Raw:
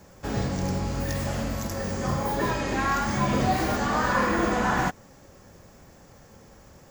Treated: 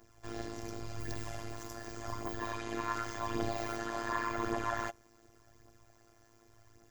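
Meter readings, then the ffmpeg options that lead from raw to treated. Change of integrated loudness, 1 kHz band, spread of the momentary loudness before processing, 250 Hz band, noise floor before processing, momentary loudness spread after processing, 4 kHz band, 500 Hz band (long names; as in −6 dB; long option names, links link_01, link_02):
−12.5 dB, −11.5 dB, 7 LU, −13.5 dB, −52 dBFS, 9 LU, −11.5 dB, −11.5 dB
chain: -af "aphaser=in_gain=1:out_gain=1:delay=4.1:decay=0.5:speed=0.88:type=triangular,afftfilt=real='hypot(re,im)*cos(PI*b)':imag='0':win_size=512:overlap=0.75,tremolo=f=110:d=0.857,volume=-5.5dB"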